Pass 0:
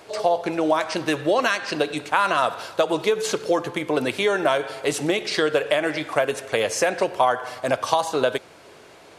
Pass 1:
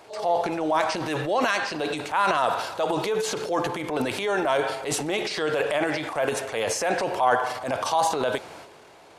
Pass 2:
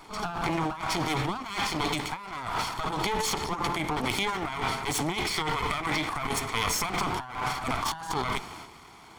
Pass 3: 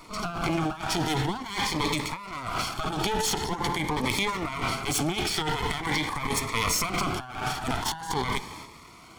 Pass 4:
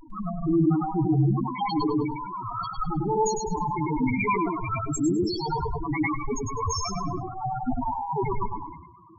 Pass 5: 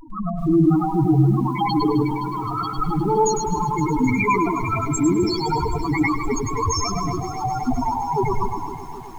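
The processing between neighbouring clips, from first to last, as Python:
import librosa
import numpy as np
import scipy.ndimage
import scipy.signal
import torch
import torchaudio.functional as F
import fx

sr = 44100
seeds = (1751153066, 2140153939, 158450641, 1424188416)

y1 = fx.peak_eq(x, sr, hz=840.0, db=6.0, octaves=0.58)
y1 = fx.transient(y1, sr, attack_db=-6, sustain_db=9)
y1 = y1 * librosa.db_to_amplitude(-4.5)
y2 = fx.lower_of_two(y1, sr, delay_ms=0.91)
y2 = fx.over_compress(y2, sr, threshold_db=-29.0, ratio=-0.5)
y3 = fx.notch_cascade(y2, sr, direction='rising', hz=0.45)
y3 = y3 * librosa.db_to_amplitude(3.0)
y4 = fx.spec_topn(y3, sr, count=2)
y4 = fx.echo_feedback(y4, sr, ms=103, feedback_pct=26, wet_db=-4)
y4 = fx.sustainer(y4, sr, db_per_s=56.0)
y4 = y4 * librosa.db_to_amplitude(8.5)
y5 = fx.echo_crushed(y4, sr, ms=259, feedback_pct=80, bits=8, wet_db=-14)
y5 = y5 * librosa.db_to_amplitude(5.5)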